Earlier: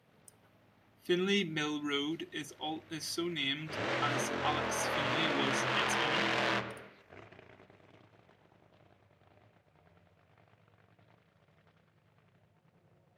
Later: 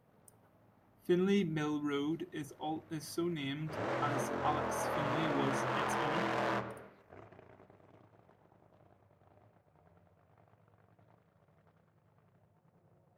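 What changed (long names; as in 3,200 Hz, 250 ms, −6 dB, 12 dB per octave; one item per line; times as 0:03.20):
background: add high-pass filter 220 Hz 6 dB per octave
master: remove meter weighting curve D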